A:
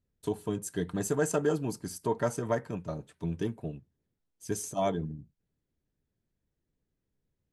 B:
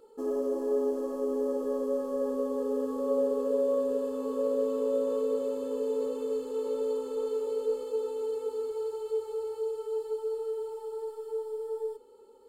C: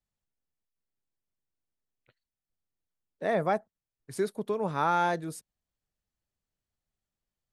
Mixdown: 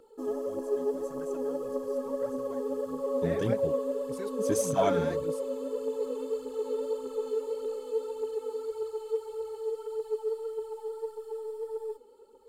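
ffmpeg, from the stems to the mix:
ffmpeg -i stem1.wav -i stem2.wav -i stem3.wav -filter_complex "[0:a]volume=1.5dB[link_01];[1:a]acrossover=split=410[link_02][link_03];[link_02]acompressor=threshold=-41dB:ratio=2[link_04];[link_04][link_03]amix=inputs=2:normalize=0,volume=-2dB[link_05];[2:a]equalizer=frequency=810:width=1.1:gain=-12,volume=-7.5dB,asplit=2[link_06][link_07];[link_07]apad=whole_len=332008[link_08];[link_01][link_08]sidechaingate=range=-23dB:threshold=-60dB:ratio=16:detection=peak[link_09];[link_09][link_05][link_06]amix=inputs=3:normalize=0,aphaser=in_gain=1:out_gain=1:delay=4.9:decay=0.53:speed=1.7:type=triangular" out.wav

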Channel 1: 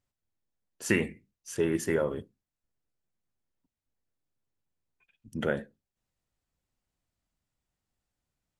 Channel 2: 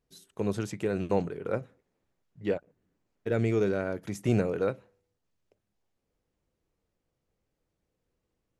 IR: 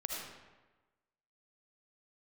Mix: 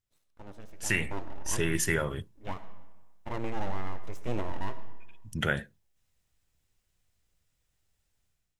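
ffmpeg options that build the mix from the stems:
-filter_complex "[0:a]equalizer=frequency=250:width_type=o:width=1:gain=-12,equalizer=frequency=500:width_type=o:width=1:gain=-12,equalizer=frequency=1000:width_type=o:width=1:gain=-6,volume=-2dB[link_01];[1:a]highshelf=frequency=5900:gain=-7,bandreject=frequency=168.3:width_type=h:width=4,bandreject=frequency=336.6:width_type=h:width=4,bandreject=frequency=504.9:width_type=h:width=4,bandreject=frequency=673.2:width_type=h:width=4,bandreject=frequency=841.5:width_type=h:width=4,bandreject=frequency=1009.8:width_type=h:width=4,bandreject=frequency=1178.1:width_type=h:width=4,bandreject=frequency=1346.4:width_type=h:width=4,bandreject=frequency=1514.7:width_type=h:width=4,bandreject=frequency=1683:width_type=h:width=4,bandreject=frequency=1851.3:width_type=h:width=4,bandreject=frequency=2019.6:width_type=h:width=4,bandreject=frequency=2187.9:width_type=h:width=4,bandreject=frequency=2356.2:width_type=h:width=4,bandreject=frequency=2524.5:width_type=h:width=4,bandreject=frequency=2692.8:width_type=h:width=4,bandreject=frequency=2861.1:width_type=h:width=4,bandreject=frequency=3029.4:width_type=h:width=4,bandreject=frequency=3197.7:width_type=h:width=4,bandreject=frequency=3366:width_type=h:width=4,bandreject=frequency=3534.3:width_type=h:width=4,bandreject=frequency=3702.6:width_type=h:width=4,bandreject=frequency=3870.9:width_type=h:width=4,bandreject=frequency=4039.2:width_type=h:width=4,bandreject=frequency=4207.5:width_type=h:width=4,bandreject=frequency=4375.8:width_type=h:width=4,bandreject=frequency=4544.1:width_type=h:width=4,bandreject=frequency=4712.4:width_type=h:width=4,bandreject=frequency=4880.7:width_type=h:width=4,bandreject=frequency=5049:width_type=h:width=4,bandreject=frequency=5217.3:width_type=h:width=4,bandreject=frequency=5385.6:width_type=h:width=4,bandreject=frequency=5553.9:width_type=h:width=4,bandreject=frequency=5722.2:width_type=h:width=4,bandreject=frequency=5890.5:width_type=h:width=4,bandreject=frequency=6058.8:width_type=h:width=4,bandreject=frequency=6227.1:width_type=h:width=4,bandreject=frequency=6395.4:width_type=h:width=4,bandreject=frequency=6563.7:width_type=h:width=4,aeval=exprs='abs(val(0))':channel_layout=same,volume=-18.5dB,asplit=2[link_02][link_03];[link_03]volume=-9.5dB[link_04];[2:a]atrim=start_sample=2205[link_05];[link_04][link_05]afir=irnorm=-1:irlink=0[link_06];[link_01][link_02][link_06]amix=inputs=3:normalize=0,bandreject=frequency=4500:width=20,dynaudnorm=framelen=750:gausssize=3:maxgain=11.5dB"

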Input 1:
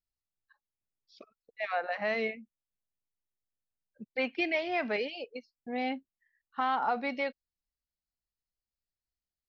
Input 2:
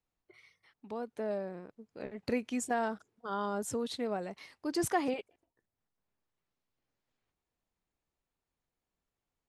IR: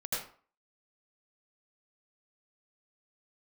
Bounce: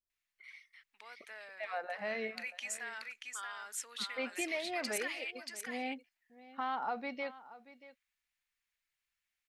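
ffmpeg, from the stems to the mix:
-filter_complex "[0:a]volume=-7dB,asplit=2[link_01][link_02];[link_02]volume=-17dB[link_03];[1:a]alimiter=level_in=4dB:limit=-24dB:level=0:latency=1:release=50,volume=-4dB,highpass=frequency=2000:width_type=q:width=2.2,adelay=100,volume=1dB,asplit=2[link_04][link_05];[link_05]volume=-4.5dB[link_06];[link_03][link_06]amix=inputs=2:normalize=0,aecho=0:1:632:1[link_07];[link_01][link_04][link_07]amix=inputs=3:normalize=0"

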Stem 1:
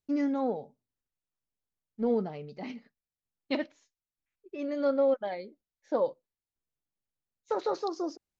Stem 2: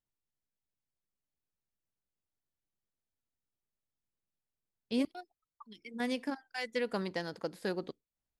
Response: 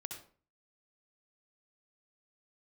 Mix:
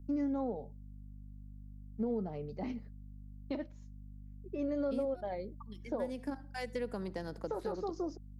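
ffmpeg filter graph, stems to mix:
-filter_complex "[0:a]aeval=exprs='val(0)+0.00316*(sin(2*PI*50*n/s)+sin(2*PI*2*50*n/s)/2+sin(2*PI*3*50*n/s)/3+sin(2*PI*4*50*n/s)/4+sin(2*PI*5*50*n/s)/5)':channel_layout=same,volume=2dB[link_01];[1:a]alimiter=level_in=2.5dB:limit=-24dB:level=0:latency=1:release=426,volume=-2.5dB,volume=2.5dB,asplit=2[link_02][link_03];[link_03]volume=-13.5dB[link_04];[2:a]atrim=start_sample=2205[link_05];[link_04][link_05]afir=irnorm=-1:irlink=0[link_06];[link_01][link_02][link_06]amix=inputs=3:normalize=0,equalizer=frequency=3100:width=0.49:gain=-10,acrossover=split=160[link_07][link_08];[link_08]acompressor=threshold=-33dB:ratio=2.5[link_09];[link_07][link_09]amix=inputs=2:normalize=0,alimiter=level_in=2.5dB:limit=-24dB:level=0:latency=1:release=447,volume=-2.5dB"

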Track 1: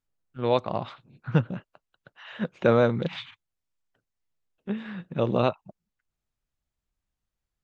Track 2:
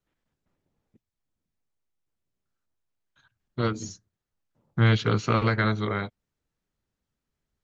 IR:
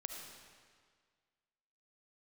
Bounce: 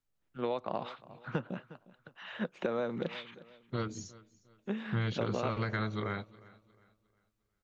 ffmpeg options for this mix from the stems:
-filter_complex "[0:a]acrossover=split=180|2200[link_01][link_02][link_03];[link_01]acompressor=threshold=-57dB:ratio=4[link_04];[link_02]acompressor=threshold=-25dB:ratio=4[link_05];[link_03]acompressor=threshold=-47dB:ratio=4[link_06];[link_04][link_05][link_06]amix=inputs=3:normalize=0,volume=-1.5dB,asplit=2[link_07][link_08];[link_08]volume=-20.5dB[link_09];[1:a]adelay=150,volume=-7dB,asplit=2[link_10][link_11];[link_11]volume=-23dB[link_12];[link_09][link_12]amix=inputs=2:normalize=0,aecho=0:1:357|714|1071|1428|1785:1|0.34|0.116|0.0393|0.0134[link_13];[link_07][link_10][link_13]amix=inputs=3:normalize=0,acompressor=threshold=-29dB:ratio=4"

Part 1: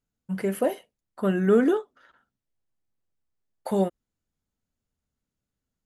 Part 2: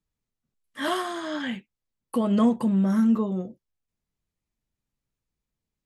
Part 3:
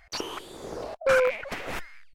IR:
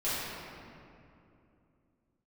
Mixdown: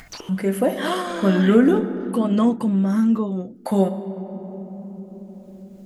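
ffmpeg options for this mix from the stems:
-filter_complex "[0:a]equalizer=frequency=240:width=1.5:gain=4,bandreject=frequency=420:width=12,volume=2.5dB,asplit=2[link_01][link_02];[link_02]volume=-16dB[link_03];[1:a]volume=2.5dB[link_04];[2:a]volume=-16.5dB[link_05];[3:a]atrim=start_sample=2205[link_06];[link_03][link_06]afir=irnorm=-1:irlink=0[link_07];[link_01][link_04][link_05][link_07]amix=inputs=4:normalize=0,acompressor=mode=upward:threshold=-25dB:ratio=2.5"

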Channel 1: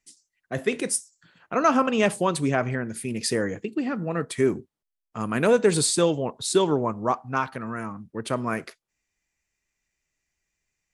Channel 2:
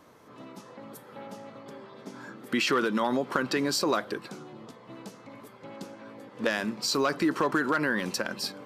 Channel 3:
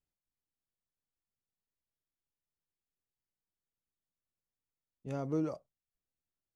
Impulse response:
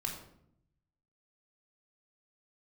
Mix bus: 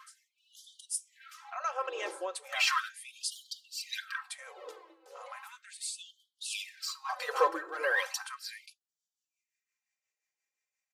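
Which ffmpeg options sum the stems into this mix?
-filter_complex "[0:a]alimiter=limit=-14.5dB:level=0:latency=1:release=428,acrossover=split=840[link_01][link_02];[link_01]aeval=exprs='val(0)*(1-0.5/2+0.5/2*cos(2*PI*5.7*n/s))':channel_layout=same[link_03];[link_02]aeval=exprs='val(0)*(1-0.5/2-0.5/2*cos(2*PI*5.7*n/s))':channel_layout=same[link_04];[link_03][link_04]amix=inputs=2:normalize=0,volume=-7.5dB[link_05];[1:a]lowshelf=frequency=400:gain=6.5,tremolo=f=1.5:d=0.92,aphaser=in_gain=1:out_gain=1:delay=4.1:decay=0.61:speed=0.48:type=sinusoidal,volume=-3.5dB,asplit=2[link_06][link_07];[link_07]volume=-13dB[link_08];[2:a]equalizer=frequency=300:width_type=o:width=0.28:gain=9.5,aphaser=in_gain=1:out_gain=1:delay=4.6:decay=0.42:speed=0.58:type=sinusoidal,volume=-17.5dB,asplit=2[link_09][link_10];[link_10]apad=whole_len=482348[link_11];[link_05][link_11]sidechaincompress=threshold=-46dB:ratio=8:attack=11:release=1500[link_12];[3:a]atrim=start_sample=2205[link_13];[link_08][link_13]afir=irnorm=-1:irlink=0[link_14];[link_12][link_06][link_09][link_14]amix=inputs=4:normalize=0,lowshelf=frequency=200:gain=-7.5,aecho=1:1:3.8:0.6,afftfilt=real='re*gte(b*sr/1024,310*pow(3000/310,0.5+0.5*sin(2*PI*0.36*pts/sr)))':imag='im*gte(b*sr/1024,310*pow(3000/310,0.5+0.5*sin(2*PI*0.36*pts/sr)))':win_size=1024:overlap=0.75"

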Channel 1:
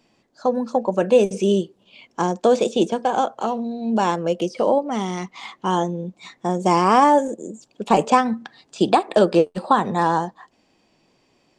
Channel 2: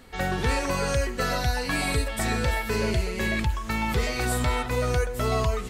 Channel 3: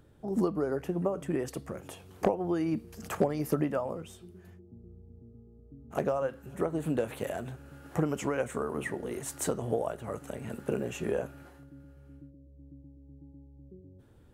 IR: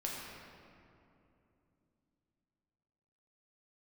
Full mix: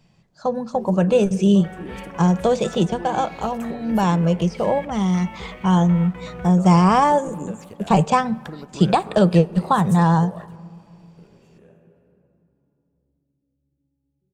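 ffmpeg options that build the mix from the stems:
-filter_complex "[0:a]lowshelf=frequency=210:width_type=q:width=3:gain=7.5,volume=-1.5dB,asplit=3[link_01][link_02][link_03];[link_02]volume=-21.5dB[link_04];[1:a]bass=frequency=250:gain=-10,treble=frequency=4000:gain=-11,afwtdn=0.0126,adelay=1450,volume=-8.5dB[link_05];[2:a]adelay=500,volume=-4.5dB,asplit=2[link_06][link_07];[link_07]volume=-20.5dB[link_08];[link_03]apad=whole_len=654336[link_09];[link_06][link_09]sidechaingate=range=-23dB:threshold=-52dB:ratio=16:detection=peak[link_10];[link_05][link_10]amix=inputs=2:normalize=0,aeval=exprs='sgn(val(0))*max(abs(val(0))-0.00106,0)':channel_layout=same,alimiter=level_in=1.5dB:limit=-24dB:level=0:latency=1:release=297,volume=-1.5dB,volume=0dB[link_11];[3:a]atrim=start_sample=2205[link_12];[link_04][link_08]amix=inputs=2:normalize=0[link_13];[link_13][link_12]afir=irnorm=-1:irlink=0[link_14];[link_01][link_11][link_14]amix=inputs=3:normalize=0,lowshelf=frequency=83:gain=7"

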